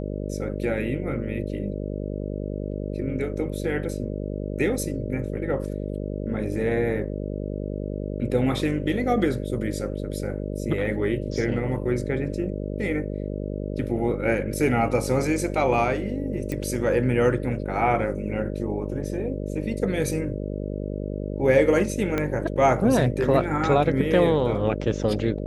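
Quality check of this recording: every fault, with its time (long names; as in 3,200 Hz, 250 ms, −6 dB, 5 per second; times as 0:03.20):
mains buzz 50 Hz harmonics 12 −30 dBFS
0:16.52: click −16 dBFS
0:22.18: click −12 dBFS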